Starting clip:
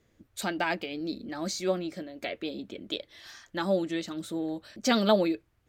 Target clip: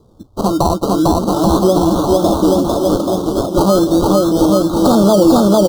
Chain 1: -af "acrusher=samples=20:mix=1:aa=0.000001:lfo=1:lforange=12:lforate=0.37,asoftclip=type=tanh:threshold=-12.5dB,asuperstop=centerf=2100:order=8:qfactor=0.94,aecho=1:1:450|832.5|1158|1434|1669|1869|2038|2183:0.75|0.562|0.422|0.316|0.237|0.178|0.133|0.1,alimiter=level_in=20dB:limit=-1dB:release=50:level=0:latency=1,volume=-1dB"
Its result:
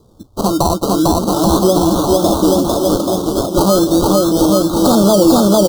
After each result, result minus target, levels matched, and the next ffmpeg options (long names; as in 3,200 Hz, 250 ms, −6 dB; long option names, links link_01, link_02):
soft clipping: distortion +20 dB; 8,000 Hz band +5.0 dB
-af "acrusher=samples=20:mix=1:aa=0.000001:lfo=1:lforange=12:lforate=0.37,asoftclip=type=tanh:threshold=-1.5dB,asuperstop=centerf=2100:order=8:qfactor=0.94,aecho=1:1:450|832.5|1158|1434|1669|1869|2038|2183:0.75|0.562|0.422|0.316|0.237|0.178|0.133|0.1,alimiter=level_in=20dB:limit=-1dB:release=50:level=0:latency=1,volume=-1dB"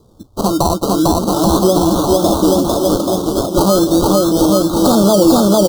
8,000 Hz band +5.0 dB
-af "acrusher=samples=20:mix=1:aa=0.000001:lfo=1:lforange=12:lforate=0.37,asoftclip=type=tanh:threshold=-1.5dB,asuperstop=centerf=2100:order=8:qfactor=0.94,highshelf=frequency=3800:gain=-7,aecho=1:1:450|832.5|1158|1434|1669|1869|2038|2183:0.75|0.562|0.422|0.316|0.237|0.178|0.133|0.1,alimiter=level_in=20dB:limit=-1dB:release=50:level=0:latency=1,volume=-1dB"